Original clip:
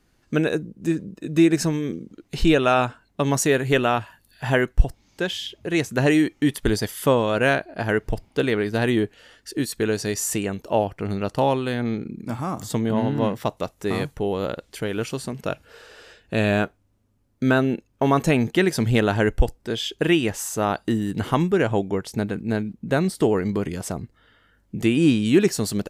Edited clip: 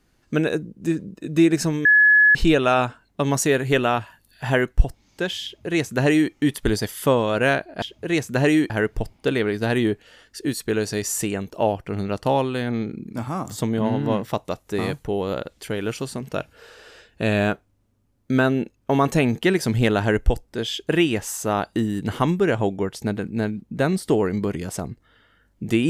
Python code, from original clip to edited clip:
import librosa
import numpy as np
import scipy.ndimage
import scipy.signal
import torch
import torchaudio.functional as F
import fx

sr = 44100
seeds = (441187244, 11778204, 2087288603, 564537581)

y = fx.edit(x, sr, fx.bleep(start_s=1.85, length_s=0.5, hz=1700.0, db=-10.5),
    fx.duplicate(start_s=5.44, length_s=0.88, to_s=7.82), tone=tone)